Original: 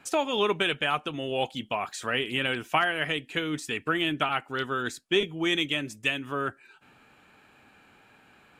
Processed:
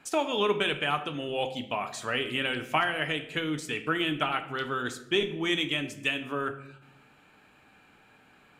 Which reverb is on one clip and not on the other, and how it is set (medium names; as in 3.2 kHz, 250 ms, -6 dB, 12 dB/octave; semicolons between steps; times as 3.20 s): simulated room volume 240 m³, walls mixed, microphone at 0.41 m; trim -2 dB